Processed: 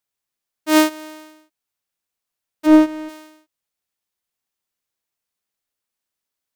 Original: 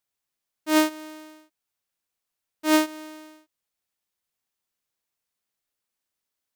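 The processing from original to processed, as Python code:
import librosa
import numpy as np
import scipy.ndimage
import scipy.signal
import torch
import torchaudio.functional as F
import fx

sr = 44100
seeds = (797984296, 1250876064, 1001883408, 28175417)

y = fx.tilt_eq(x, sr, slope=-3.5, at=(2.65, 3.08), fade=0.02)
y = fx.leveller(y, sr, passes=1)
y = y * 10.0 ** (2.5 / 20.0)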